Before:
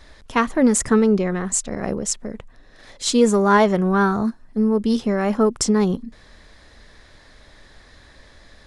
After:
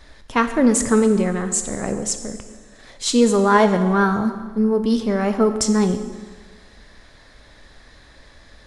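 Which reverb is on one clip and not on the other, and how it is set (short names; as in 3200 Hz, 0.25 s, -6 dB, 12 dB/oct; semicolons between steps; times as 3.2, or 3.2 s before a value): plate-style reverb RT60 1.5 s, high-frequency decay 0.95×, DRR 7.5 dB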